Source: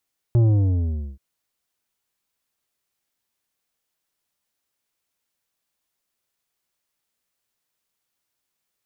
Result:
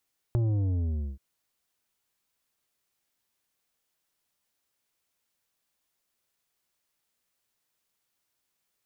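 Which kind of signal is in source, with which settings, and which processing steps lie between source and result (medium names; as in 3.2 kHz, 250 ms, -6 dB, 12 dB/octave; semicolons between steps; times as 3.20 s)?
sub drop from 120 Hz, over 0.83 s, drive 9 dB, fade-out 0.78 s, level -14 dB
compression 3:1, threshold -29 dBFS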